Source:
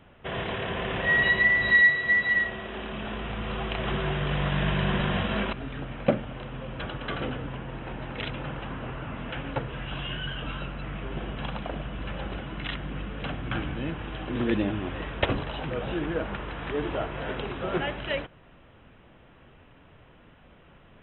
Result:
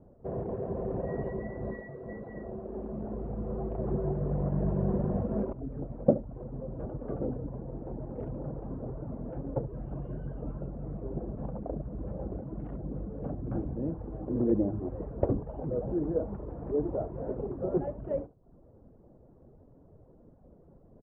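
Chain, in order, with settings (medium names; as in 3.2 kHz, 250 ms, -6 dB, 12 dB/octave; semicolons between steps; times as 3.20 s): reverb removal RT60 0.6 s; four-pole ladder low-pass 700 Hz, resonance 25%; delay 71 ms -15.5 dB; trim +5.5 dB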